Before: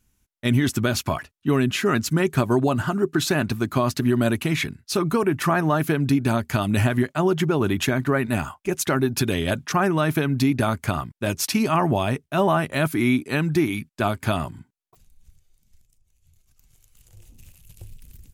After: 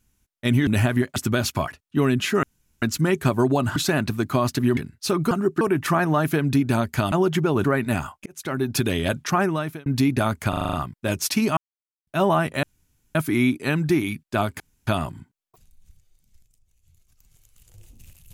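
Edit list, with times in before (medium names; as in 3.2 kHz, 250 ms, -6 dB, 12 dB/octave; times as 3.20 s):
1.94 s: insert room tone 0.39 s
2.88–3.18 s: move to 5.17 s
4.19–4.63 s: delete
6.68–7.17 s: move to 0.67 s
7.69–8.06 s: delete
8.68–9.18 s: fade in
9.82–10.28 s: fade out linear
10.91 s: stutter 0.04 s, 7 plays
11.75–12.25 s: mute
12.81 s: insert room tone 0.52 s
14.26 s: insert room tone 0.27 s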